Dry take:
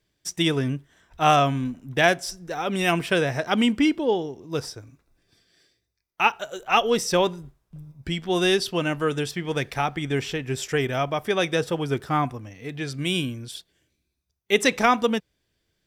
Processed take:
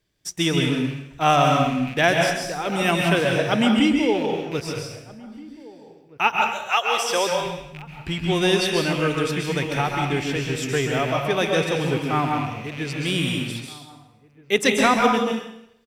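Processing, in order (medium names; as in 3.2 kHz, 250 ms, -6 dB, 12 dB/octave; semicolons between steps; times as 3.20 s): rattle on loud lows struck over -37 dBFS, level -26 dBFS; 6.48–7.30 s: high-pass 1.1 kHz -> 420 Hz 12 dB/octave; echo from a far wall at 270 m, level -21 dB; plate-style reverb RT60 0.77 s, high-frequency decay 1×, pre-delay 120 ms, DRR 1 dB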